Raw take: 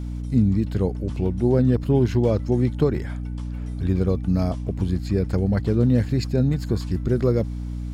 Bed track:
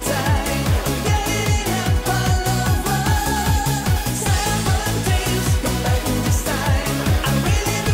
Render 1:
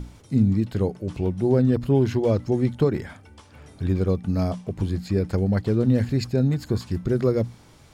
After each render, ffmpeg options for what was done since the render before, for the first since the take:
-af "bandreject=f=60:t=h:w=6,bandreject=f=120:t=h:w=6,bandreject=f=180:t=h:w=6,bandreject=f=240:t=h:w=6,bandreject=f=300:t=h:w=6"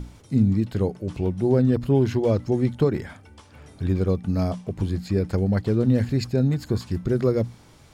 -af anull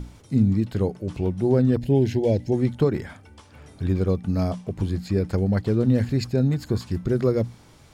-filter_complex "[0:a]asettb=1/sr,asplit=3[a][b][c];[a]atrim=end=1.804[d];[b]atrim=start=1.8:end=2.53,asetpts=PTS-STARTPTS,afade=t=in:d=0.004:c=qsin,afade=t=out:st=0.726:d=0.004:c=qsin,asuperstop=centerf=1200:order=4:qfactor=1.4[e];[c]atrim=start=2.526[f];[d][e]acrossfade=d=0.004:c1=hsin:c2=qsin[g];[g][f]acrossfade=d=0.004:c1=qsin:c2=hsin"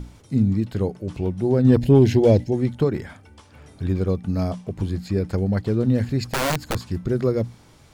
-filter_complex "[0:a]asplit=3[a][b][c];[a]afade=t=out:st=1.64:d=0.02[d];[b]acontrast=63,afade=t=in:st=1.64:d=0.02,afade=t=out:st=2.43:d=0.02[e];[c]afade=t=in:st=2.43:d=0.02[f];[d][e][f]amix=inputs=3:normalize=0,asettb=1/sr,asplit=3[g][h][i];[g]atrim=end=6.324[j];[h]atrim=start=6.32:end=6.75,asetpts=PTS-STARTPTS,afade=t=in:d=0.004:c=qsin,afade=t=out:st=0.426:d=0.004:c=qsin,aeval=exprs='(mod(7.08*val(0)+1,2)-1)/7.08':c=same[k];[i]atrim=start=6.746[l];[j][k]acrossfade=d=0.004:c1=hsin:c2=qsin[m];[m][l]acrossfade=d=0.004:c1=qsin:c2=hsin"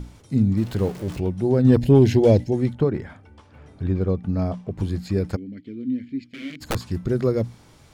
-filter_complex "[0:a]asettb=1/sr,asplit=3[a][b][c];[a]atrim=end=0.574[d];[b]atrim=start=0.57:end=1.2,asetpts=PTS-STARTPTS,afade=t=in:d=0.004:c=qsin,afade=t=out:st=0.626:d=0.004:c=qsin,aeval=exprs='val(0)+0.5*0.0188*sgn(val(0))':c=same[e];[c]atrim=start=1.196[f];[d][e]acrossfade=d=0.004:c1=hsin:c2=qsin[g];[g][f]acrossfade=d=0.004:c1=qsin:c2=hsin,asettb=1/sr,asplit=3[h][i][j];[h]atrim=end=2.734[k];[i]atrim=start=2.73:end=4.78,asetpts=PTS-STARTPTS,afade=t=in:d=0.004:c=qsin,afade=t=out:st=2.046:d=0.004:c=qsin,lowpass=f=2k:p=1[l];[j]atrim=start=4.776[m];[k][l]acrossfade=d=0.004:c1=hsin:c2=qsin[n];[n][m]acrossfade=d=0.004:c1=qsin:c2=hsin,asplit=3[o][p][q];[o]afade=t=out:st=5.35:d=0.02[r];[p]asplit=3[s][t][u];[s]bandpass=f=270:t=q:w=8,volume=0dB[v];[t]bandpass=f=2.29k:t=q:w=8,volume=-6dB[w];[u]bandpass=f=3.01k:t=q:w=8,volume=-9dB[x];[v][w][x]amix=inputs=3:normalize=0,afade=t=in:st=5.35:d=0.02,afade=t=out:st=6.6:d=0.02[y];[q]afade=t=in:st=6.6:d=0.02[z];[r][y][z]amix=inputs=3:normalize=0"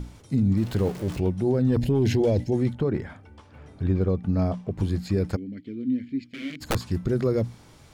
-af "alimiter=limit=-15dB:level=0:latency=1:release=15"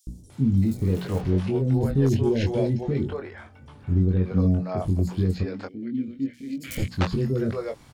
-filter_complex "[0:a]asplit=2[a][b];[b]adelay=22,volume=-5dB[c];[a][c]amix=inputs=2:normalize=0,acrossover=split=460|5500[d][e][f];[d]adelay=70[g];[e]adelay=300[h];[g][h][f]amix=inputs=3:normalize=0"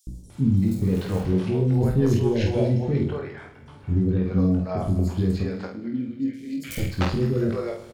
-filter_complex "[0:a]asplit=2[a][b];[b]adelay=48,volume=-5dB[c];[a][c]amix=inputs=2:normalize=0,aecho=1:1:105|210|315|420|525|630:0.188|0.107|0.0612|0.0349|0.0199|0.0113"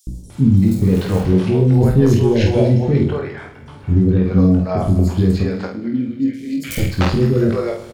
-af "volume=8dB,alimiter=limit=-3dB:level=0:latency=1"

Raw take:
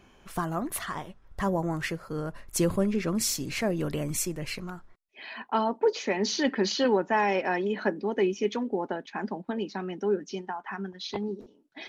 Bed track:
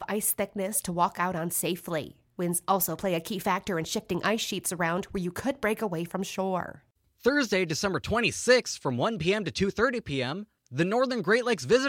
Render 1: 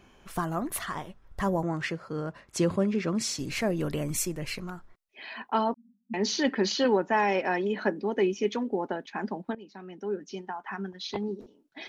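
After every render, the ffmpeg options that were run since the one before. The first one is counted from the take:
-filter_complex "[0:a]asettb=1/sr,asplit=3[a][b][c];[a]atrim=end=1.634[d];[b]atrim=start=1.63:end=3.39,asetpts=PTS-STARTPTS,afade=t=in:d=0.004:c=qsin,afade=t=out:st=1.756:d=0.004:c=qsin,highpass=100,lowpass=6.2k[e];[c]atrim=start=3.386[f];[d][e]acrossfade=d=0.004:c1=hsin:c2=qsin[g];[g][f]acrossfade=d=0.004:c1=qsin:c2=hsin,asettb=1/sr,asplit=3[h][i][j];[h]atrim=end=5.744[k];[i]atrim=start=5.74:end=6.14,asetpts=PTS-STARTPTS,afade=t=in:d=0.004:c=qsin,afade=t=out:st=0.396:d=0.004:c=qsin,asuperpass=centerf=220:order=20:qfactor=3.7[l];[j]atrim=start=6.136[m];[k][l]acrossfade=d=0.004:c1=hsin:c2=qsin[n];[n][m]acrossfade=d=0.004:c1=qsin:c2=hsin,asplit=2[o][p];[o]atrim=end=9.55,asetpts=PTS-STARTPTS,afade=t=out:st=9.546:d=0.004:c=hsin:silence=0.125893[q];[p]atrim=start=9.55,asetpts=PTS-STARTPTS,afade=t=in:d=1.2:silence=0.125893[r];[q][r]concat=n=2:v=0:a=1"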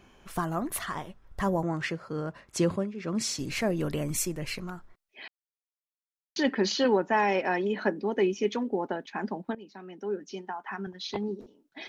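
-filter_complex "[0:a]asettb=1/sr,asplit=3[a][b][c];[a]atrim=end=9.724[d];[b]atrim=start=9.72:end=10.87,asetpts=PTS-STARTPTS,afade=t=in:d=0.004:c=qsin,afade=t=out:st=1.146:d=0.004:c=qsin,highpass=170[e];[c]atrim=start=10.866[f];[d][e]acrossfade=d=0.004:c1=hsin:c2=qsin[g];[g][f]acrossfade=d=0.004:c1=qsin:c2=hsin,asplit=4[h][i][j][k];[h]atrim=end=2.94,asetpts=PTS-STARTPTS,afade=t=out:st=2.69:d=0.25:silence=0.199526[l];[i]atrim=start=2.94:end=5.28,asetpts=PTS-STARTPTS,afade=t=in:d=0.25:silence=0.199526,afade=t=out:st=2.336:d=0.004:c=hsin[m];[j]atrim=start=5.28:end=6.36,asetpts=PTS-STARTPTS,volume=0[n];[k]atrim=start=6.36,asetpts=PTS-STARTPTS,afade=t=in:d=0.004:c=hsin[o];[l][m][n][o]concat=n=4:v=0:a=1"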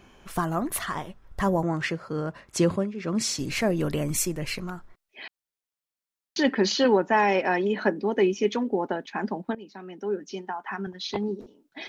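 -af "volume=3.5dB"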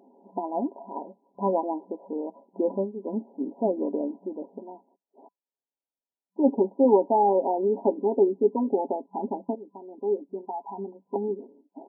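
-af "afftfilt=real='re*between(b*sr/4096,190,1000)':imag='im*between(b*sr/4096,190,1000)':win_size=4096:overlap=0.75,aecho=1:1:7.3:0.47"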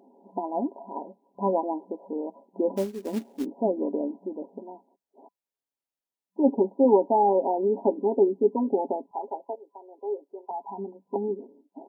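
-filter_complex "[0:a]asplit=3[a][b][c];[a]afade=t=out:st=2.76:d=0.02[d];[b]acrusher=bits=4:mode=log:mix=0:aa=0.000001,afade=t=in:st=2.76:d=0.02,afade=t=out:st=3.44:d=0.02[e];[c]afade=t=in:st=3.44:d=0.02[f];[d][e][f]amix=inputs=3:normalize=0,asettb=1/sr,asplit=3[g][h][i];[g]atrim=end=9.114[j];[h]atrim=start=9.11:end=10.51,asetpts=PTS-STARTPTS,afade=t=in:d=0.004:c=qsin,afade=t=out:st=1.396:d=0.004:c=qsin,highpass=f=450:w=0.5412,highpass=f=450:w=1.3066[k];[i]atrim=start=10.506[l];[j][k]acrossfade=d=0.004:c1=hsin:c2=qsin[m];[m][l]acrossfade=d=0.004:c1=qsin:c2=hsin"

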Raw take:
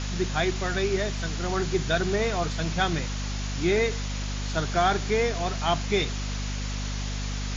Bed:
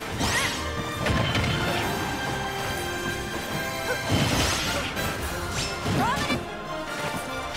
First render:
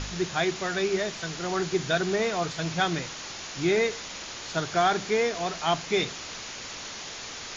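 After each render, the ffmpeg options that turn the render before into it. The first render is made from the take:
-af "bandreject=f=50:t=h:w=4,bandreject=f=100:t=h:w=4,bandreject=f=150:t=h:w=4,bandreject=f=200:t=h:w=4,bandreject=f=250:t=h:w=4"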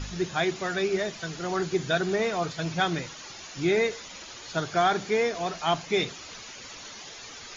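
-af "afftdn=nr=9:nf=-39"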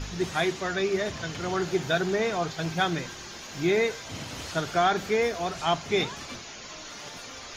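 -filter_complex "[1:a]volume=-16dB[a];[0:a][a]amix=inputs=2:normalize=0"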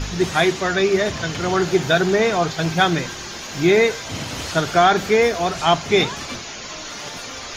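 -af "volume=9dB,alimiter=limit=-3dB:level=0:latency=1"

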